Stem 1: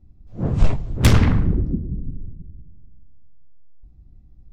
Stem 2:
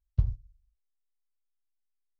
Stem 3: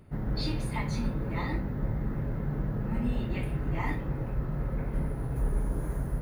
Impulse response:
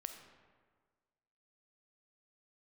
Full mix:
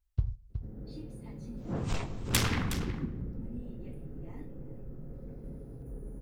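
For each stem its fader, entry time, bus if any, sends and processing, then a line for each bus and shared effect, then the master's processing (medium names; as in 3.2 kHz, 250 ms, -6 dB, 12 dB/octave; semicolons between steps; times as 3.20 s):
-5.0 dB, 1.30 s, send -3.5 dB, echo send -11.5 dB, tilt EQ +2.5 dB/octave
+2.0 dB, 0.00 s, send -21 dB, echo send -11 dB, none
-14.5 dB, 0.50 s, no send, echo send -18.5 dB, graphic EQ 250/500/1000/2000/4000 Hz +5/+7/-10/-8/-7 dB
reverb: on, RT60 1.6 s, pre-delay 5 ms
echo: delay 366 ms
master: band-stop 610 Hz, Q 12; compression 1.5:1, threshold -37 dBFS, peak gain reduction 8.5 dB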